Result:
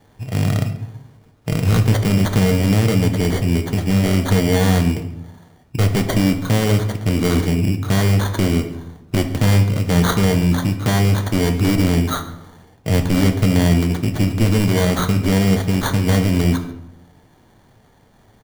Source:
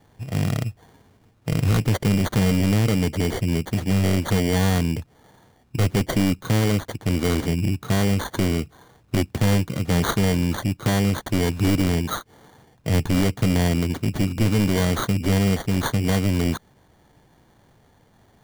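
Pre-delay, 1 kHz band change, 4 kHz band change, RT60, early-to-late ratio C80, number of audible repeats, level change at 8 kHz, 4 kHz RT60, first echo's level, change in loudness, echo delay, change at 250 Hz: 5 ms, +4.0 dB, +3.5 dB, 0.85 s, 12.5 dB, 1, +3.5 dB, 0.50 s, -20.5 dB, +4.5 dB, 138 ms, +4.5 dB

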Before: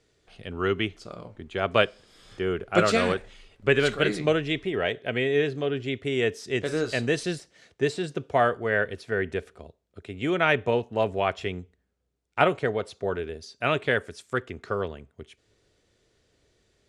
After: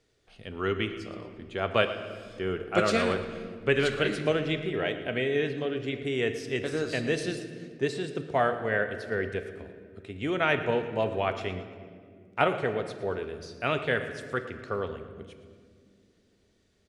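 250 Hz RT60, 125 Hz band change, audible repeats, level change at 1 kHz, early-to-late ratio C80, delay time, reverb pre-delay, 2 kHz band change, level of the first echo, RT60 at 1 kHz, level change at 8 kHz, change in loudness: 4.0 s, -2.5 dB, 2, -3.0 dB, 10.0 dB, 115 ms, 4 ms, -3.0 dB, -15.0 dB, 1.6 s, -3.5 dB, -3.0 dB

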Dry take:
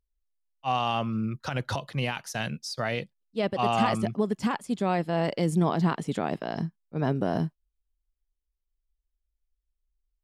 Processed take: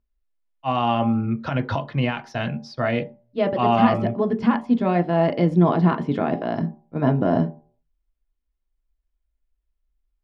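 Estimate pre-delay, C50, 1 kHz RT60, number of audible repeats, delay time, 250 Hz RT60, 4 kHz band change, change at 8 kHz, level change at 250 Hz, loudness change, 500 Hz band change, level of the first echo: 3 ms, 17.0 dB, 0.50 s, no echo, no echo, 0.35 s, 0.0 dB, under -10 dB, +8.0 dB, +6.5 dB, +7.0 dB, no echo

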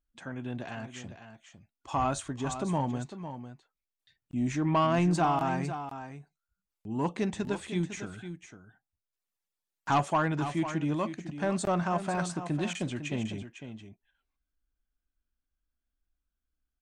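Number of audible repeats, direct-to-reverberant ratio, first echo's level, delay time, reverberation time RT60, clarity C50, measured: 1, no reverb, -10.5 dB, 502 ms, no reverb, no reverb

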